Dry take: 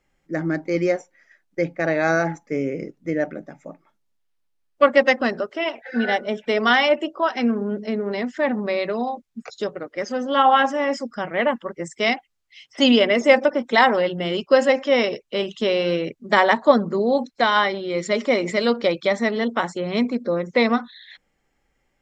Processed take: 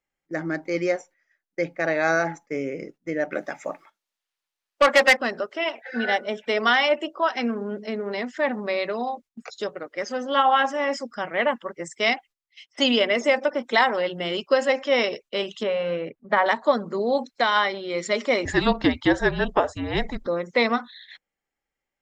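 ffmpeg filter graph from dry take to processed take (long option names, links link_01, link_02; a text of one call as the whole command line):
ffmpeg -i in.wav -filter_complex "[0:a]asettb=1/sr,asplit=3[link_01][link_02][link_03];[link_01]atrim=end=3.324[link_04];[link_02]atrim=start=3.32:end=5.17,asetpts=PTS-STARTPTS,afade=type=in:duration=0.004:curve=qsin,afade=type=out:start_time=1.846:duration=0.004:curve=qsin,highshelf=frequency=2100:gain=3.5,asplit=2[link_05][link_06];[link_06]highpass=frequency=720:poles=1,volume=19dB,asoftclip=type=tanh:threshold=-2dB[link_07];[link_05][link_07]amix=inputs=2:normalize=0,lowpass=frequency=6300:poles=1,volume=-6dB[link_08];[link_03]atrim=start=5.166[link_09];[link_04][link_08]acrossfade=duration=0.004:curve1=hsin:curve2=qsin[link_10];[link_10][link_09]acrossfade=duration=0.004:curve1=qsin:curve2=hsin,asettb=1/sr,asplit=3[link_11][link_12][link_13];[link_11]atrim=end=15.634[link_14];[link_12]atrim=start=15.63:end=16.46,asetpts=PTS-STARTPTS,afade=type=in:duration=0.004:curve=qsin,afade=type=out:start_time=0.826:duration=0.004:curve=qsin,lowpass=1800,bandreject=frequency=360:width=5.4[link_15];[link_13]atrim=start=16.456[link_16];[link_14][link_15]acrossfade=duration=0.004:curve1=hsin:curve2=qsin[link_17];[link_17][link_16]acrossfade=duration=0.004:curve1=qsin:curve2=hsin,asettb=1/sr,asplit=3[link_18][link_19][link_20];[link_18]atrim=end=18.454[link_21];[link_19]atrim=start=18.45:end=20.27,asetpts=PTS-STARTPTS,afade=type=in:duration=0.004:curve=qsin,afade=type=out:start_time=1.816:duration=0.004:curve=qsin,equalizer=frequency=870:width_type=o:width=1.3:gain=12,afreqshift=-260[link_22];[link_20]atrim=start=20.266[link_23];[link_21][link_22]acrossfade=duration=0.004:curve1=hsin:curve2=qsin[link_24];[link_24][link_23]acrossfade=duration=0.004:curve1=qsin:curve2=hsin,lowshelf=frequency=340:gain=-9,agate=range=-13dB:threshold=-45dB:ratio=16:detection=peak,alimiter=limit=-8.5dB:level=0:latency=1:release=321" out.wav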